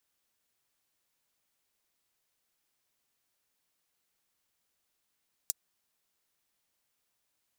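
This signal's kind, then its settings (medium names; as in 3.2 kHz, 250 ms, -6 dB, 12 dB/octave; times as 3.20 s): closed hi-hat, high-pass 6.2 kHz, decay 0.03 s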